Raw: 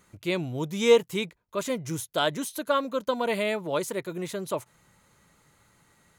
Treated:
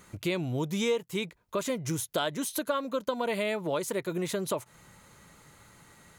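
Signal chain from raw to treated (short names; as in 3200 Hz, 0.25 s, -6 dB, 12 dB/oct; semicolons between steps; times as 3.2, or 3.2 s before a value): compressor 4:1, threshold -35 dBFS, peak gain reduction 18 dB; gain +6.5 dB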